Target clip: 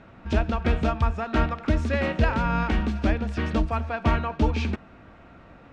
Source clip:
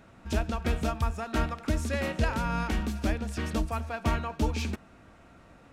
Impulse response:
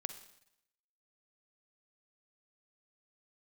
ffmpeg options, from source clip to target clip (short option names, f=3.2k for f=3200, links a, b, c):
-af "lowpass=3.4k,volume=5.5dB"